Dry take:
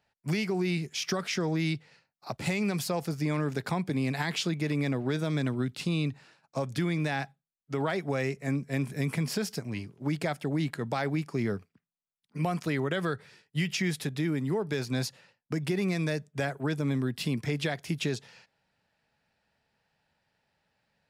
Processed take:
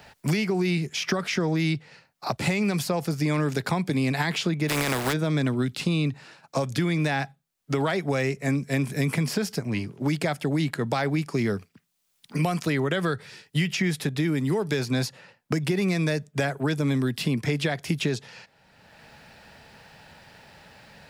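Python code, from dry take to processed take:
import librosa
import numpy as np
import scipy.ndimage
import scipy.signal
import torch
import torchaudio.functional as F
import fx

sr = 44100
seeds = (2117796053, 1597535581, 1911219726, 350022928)

y = fx.spec_flatten(x, sr, power=0.35, at=(4.68, 5.12), fade=0.02)
y = fx.band_squash(y, sr, depth_pct=70)
y = y * 10.0 ** (4.5 / 20.0)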